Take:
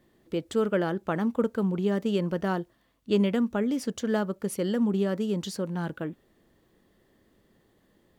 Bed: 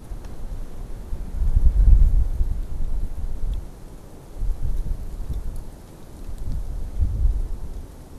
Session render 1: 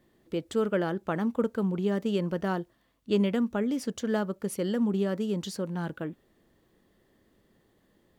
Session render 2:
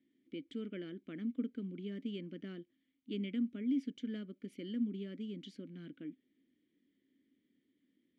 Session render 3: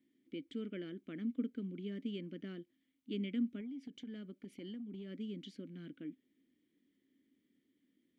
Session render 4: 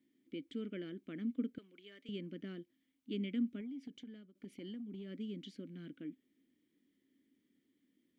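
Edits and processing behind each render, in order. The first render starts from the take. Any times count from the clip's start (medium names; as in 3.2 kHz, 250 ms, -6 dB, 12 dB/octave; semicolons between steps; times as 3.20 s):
trim -1.5 dB
vowel filter i
3.60–5.11 s: compression 12:1, threshold -42 dBFS
1.58–2.09 s: high-pass 780 Hz; 3.90–4.35 s: fade out, to -20.5 dB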